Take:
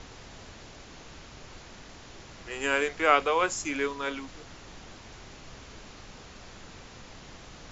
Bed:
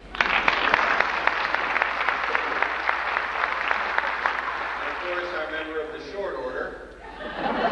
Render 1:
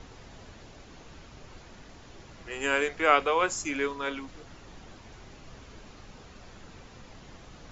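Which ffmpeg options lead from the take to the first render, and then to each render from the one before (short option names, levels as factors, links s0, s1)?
-af "afftdn=nr=6:nf=-49"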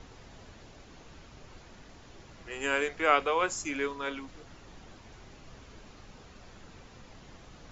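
-af "volume=0.75"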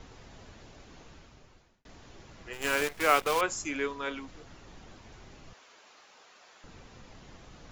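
-filter_complex "[0:a]asettb=1/sr,asplit=3[s0][s1][s2];[s0]atrim=end=2.534[s3];[s1]atrim=start=2.53:end=3.41,asetpts=PTS-STARTPTS,afade=t=in:d=0.004:c=qsin,afade=t=out:st=0.876:d=0.004:c=qsin,acrusher=bits=6:dc=4:mix=0:aa=0.000001[s4];[s2]atrim=start=3.406[s5];[s3][s4]acrossfade=d=0.004:c1=hsin:c2=qsin[s6];[s6][s5]acrossfade=d=0.004:c1=qsin:c2=hsin,asettb=1/sr,asplit=3[s7][s8][s9];[s7]atrim=end=5.534[s10];[s8]atrim=start=5.53:end=6.64,asetpts=PTS-STARTPTS,afade=t=in:d=0.004:c=qsin,afade=t=out:st=1.106:d=0.004:c=qsin,highpass=670[s11];[s9]atrim=start=6.636[s12];[s10][s11]acrossfade=d=0.004:c1=hsin:c2=qsin[s13];[s13][s12]acrossfade=d=0.004:c1=qsin:c2=hsin,asplit=2[s14][s15];[s14]atrim=end=1.85,asetpts=PTS-STARTPTS,afade=t=out:st=1.02:d=0.83[s16];[s15]atrim=start=1.85,asetpts=PTS-STARTPTS,afade=t=in:d=0.004:c=hsin[s17];[s16][s17]concat=n=2:v=0:a=1"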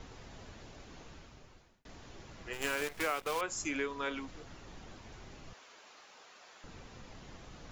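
-af "acompressor=threshold=0.0282:ratio=6"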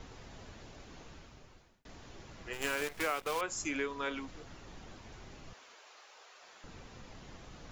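-filter_complex "[0:a]asettb=1/sr,asplit=3[s0][s1][s2];[s0]atrim=end=5.744[s3];[s1]atrim=start=5.74:end=6.42,asetpts=PTS-STARTPTS,afade=t=in:d=0.004:c=qsin,afade=t=out:st=0.676:d=0.004:c=qsin,highpass=f=370:w=0.5412,highpass=f=370:w=1.3066[s4];[s2]atrim=start=6.416[s5];[s3][s4]acrossfade=d=0.004:c1=hsin:c2=qsin[s6];[s6][s5]acrossfade=d=0.004:c1=qsin:c2=hsin"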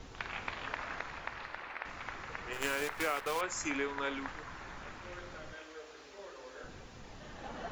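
-filter_complex "[1:a]volume=0.1[s0];[0:a][s0]amix=inputs=2:normalize=0"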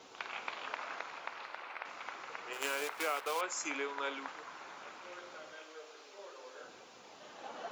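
-af "highpass=410,equalizer=f=1800:w=4.4:g=-6.5"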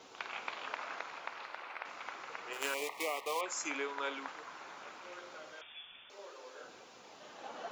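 -filter_complex "[0:a]asettb=1/sr,asplit=3[s0][s1][s2];[s0]atrim=end=2.744[s3];[s1]atrim=start=2.74:end=3.46,asetpts=PTS-STARTPTS,afade=t=in:d=0.004:c=qsin,afade=t=out:st=0.716:d=0.004:c=qsin,asuperstop=centerf=1500:order=12:qfactor=2.4[s4];[s2]atrim=start=3.456[s5];[s3][s4]acrossfade=d=0.004:c1=hsin:c2=qsin[s6];[s6][s5]acrossfade=d=0.004:c1=qsin:c2=hsin,asettb=1/sr,asplit=3[s7][s8][s9];[s7]atrim=end=5.614[s10];[s8]atrim=start=5.61:end=6.1,asetpts=PTS-STARTPTS,afade=t=in:d=0.004:c=qsin,afade=t=out:st=0.486:d=0.004:c=qsin,lowpass=f=3300:t=q:w=0.5098,lowpass=f=3300:t=q:w=0.6013,lowpass=f=3300:t=q:w=0.9,lowpass=f=3300:t=q:w=2.563,afreqshift=-3900[s11];[s9]atrim=start=6.096[s12];[s10][s11]acrossfade=d=0.004:c1=hsin:c2=qsin[s13];[s13][s12]acrossfade=d=0.004:c1=qsin:c2=hsin"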